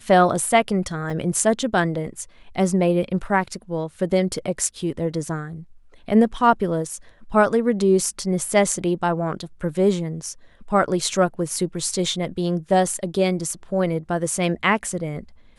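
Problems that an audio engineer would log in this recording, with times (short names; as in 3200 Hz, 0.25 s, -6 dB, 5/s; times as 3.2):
1.1 gap 2.7 ms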